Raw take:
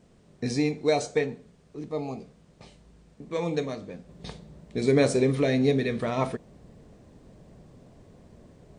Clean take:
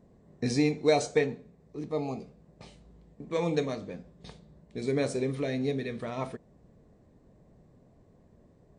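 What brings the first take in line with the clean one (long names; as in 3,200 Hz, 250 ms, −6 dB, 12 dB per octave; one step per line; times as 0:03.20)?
downward expander −48 dBFS, range −21 dB
level 0 dB, from 0:04.09 −7.5 dB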